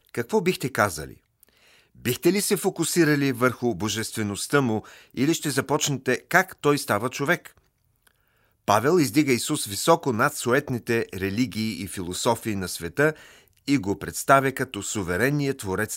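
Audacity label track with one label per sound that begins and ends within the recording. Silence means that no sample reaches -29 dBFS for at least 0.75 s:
2.060000	7.470000	sound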